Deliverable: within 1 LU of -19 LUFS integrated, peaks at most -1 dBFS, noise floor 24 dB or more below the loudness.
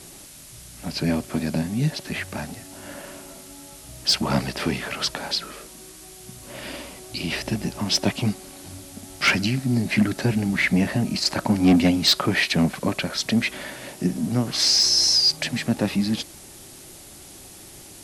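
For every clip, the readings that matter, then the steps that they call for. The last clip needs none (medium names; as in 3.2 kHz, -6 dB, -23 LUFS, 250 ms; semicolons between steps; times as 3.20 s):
clipped samples 0.2%; clipping level -11.5 dBFS; noise floor -44 dBFS; noise floor target -46 dBFS; loudness -22.0 LUFS; peak level -11.5 dBFS; loudness target -19.0 LUFS
-> clip repair -11.5 dBFS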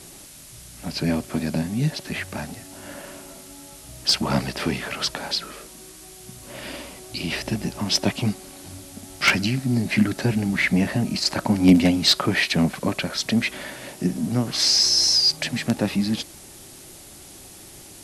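clipped samples 0.0%; noise floor -44 dBFS; noise floor target -46 dBFS
-> noise reduction 6 dB, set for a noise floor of -44 dBFS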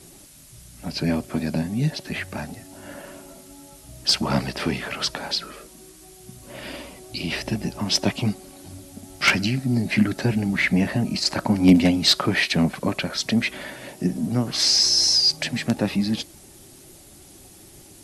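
noise floor -48 dBFS; loudness -21.5 LUFS; peak level -2.5 dBFS; loudness target -19.0 LUFS
-> trim +2.5 dB; peak limiter -1 dBFS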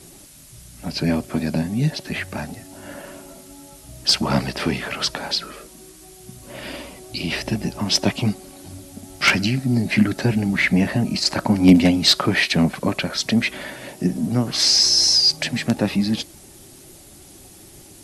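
loudness -19.5 LUFS; peak level -1.0 dBFS; noise floor -45 dBFS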